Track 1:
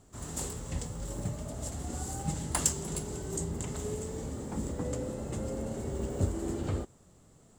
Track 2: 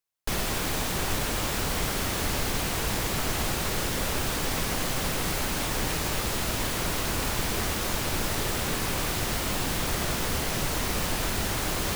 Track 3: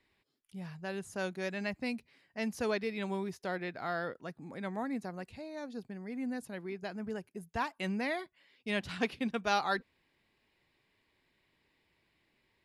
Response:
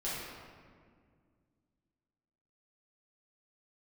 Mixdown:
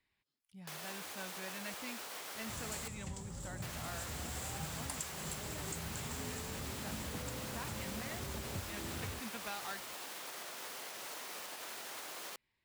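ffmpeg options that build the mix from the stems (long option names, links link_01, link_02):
-filter_complex "[0:a]highpass=64,adelay=2350,volume=-2dB[link_01];[1:a]highpass=510,alimiter=level_in=5dB:limit=-24dB:level=0:latency=1:release=335,volume=-5dB,adelay=400,volume=-7dB,asplit=3[link_02][link_03][link_04];[link_02]atrim=end=2.88,asetpts=PTS-STARTPTS,afade=type=out:start_time=2.876:duration=0.004:curve=hsin[link_05];[link_03]atrim=start=2.88:end=3.62,asetpts=PTS-STARTPTS,volume=0[link_06];[link_04]atrim=start=3.62,asetpts=PTS-STARTPTS,afade=type=in:duration=0.004:curve=hsin[link_07];[link_05][link_06][link_07]concat=n=3:v=0:a=1[link_08];[2:a]volume=-7dB[link_09];[link_01][link_09]amix=inputs=2:normalize=0,equalizer=frequency=400:width=0.89:gain=-7.5,acompressor=threshold=-40dB:ratio=6,volume=0dB[link_10];[link_08][link_10]amix=inputs=2:normalize=0"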